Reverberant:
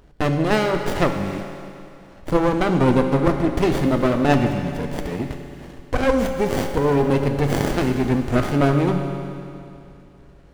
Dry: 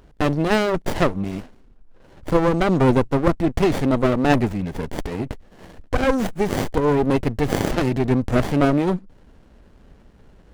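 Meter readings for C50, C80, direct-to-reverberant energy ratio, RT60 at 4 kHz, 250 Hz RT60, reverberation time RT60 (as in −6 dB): 5.5 dB, 6.5 dB, 4.0 dB, 2.6 s, 2.6 s, 2.6 s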